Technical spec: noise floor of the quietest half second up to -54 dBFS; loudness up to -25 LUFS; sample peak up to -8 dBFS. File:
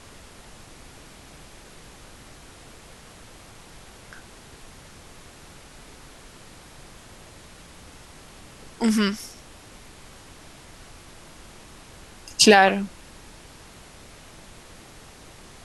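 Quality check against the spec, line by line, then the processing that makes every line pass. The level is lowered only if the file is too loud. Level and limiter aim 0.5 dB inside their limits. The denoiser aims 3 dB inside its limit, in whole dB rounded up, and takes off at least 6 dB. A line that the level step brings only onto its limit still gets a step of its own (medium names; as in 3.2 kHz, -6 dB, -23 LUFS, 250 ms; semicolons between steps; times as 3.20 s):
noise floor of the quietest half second -47 dBFS: fail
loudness -19.5 LUFS: fail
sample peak -2.5 dBFS: fail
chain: noise reduction 6 dB, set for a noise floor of -47 dBFS; trim -6 dB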